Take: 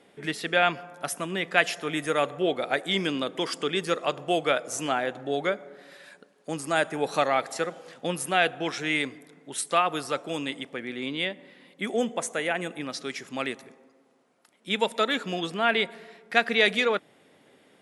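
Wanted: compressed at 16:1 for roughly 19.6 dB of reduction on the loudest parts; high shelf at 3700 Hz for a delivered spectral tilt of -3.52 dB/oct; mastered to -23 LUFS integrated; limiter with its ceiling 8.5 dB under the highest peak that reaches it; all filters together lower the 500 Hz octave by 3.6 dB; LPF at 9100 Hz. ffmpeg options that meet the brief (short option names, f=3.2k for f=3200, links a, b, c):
-af "lowpass=9.1k,equalizer=f=500:t=o:g=-4.5,highshelf=f=3.7k:g=-3,acompressor=threshold=-36dB:ratio=16,volume=19.5dB,alimiter=limit=-9.5dB:level=0:latency=1"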